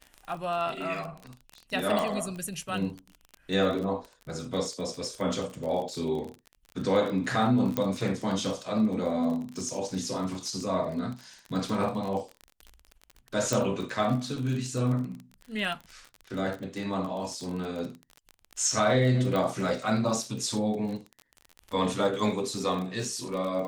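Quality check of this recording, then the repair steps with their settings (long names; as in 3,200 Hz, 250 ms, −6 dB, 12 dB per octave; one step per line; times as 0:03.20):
surface crackle 33 per second −33 dBFS
0:01.99: click
0:07.77: click −13 dBFS
0:13.53: click
0:19.36: click −18 dBFS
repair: click removal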